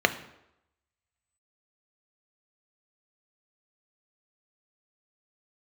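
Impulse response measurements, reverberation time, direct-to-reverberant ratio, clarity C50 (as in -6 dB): 0.85 s, 8.5 dB, 14.0 dB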